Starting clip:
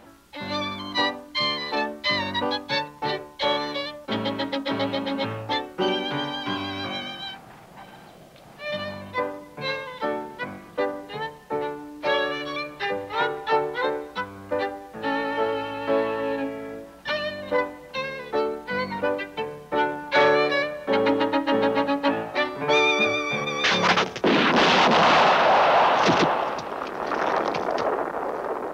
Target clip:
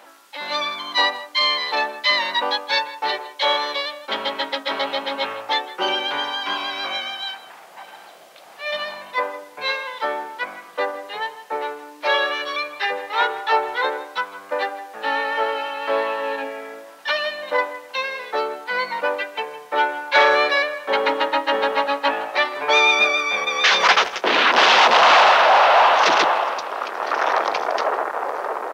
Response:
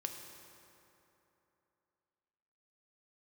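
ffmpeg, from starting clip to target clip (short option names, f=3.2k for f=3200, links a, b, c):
-filter_complex "[0:a]highpass=650,asplit=2[a][b];[b]adelay=160,highpass=300,lowpass=3.4k,asoftclip=type=hard:threshold=-17.5dB,volume=-15dB[c];[a][c]amix=inputs=2:normalize=0,volume=6dB"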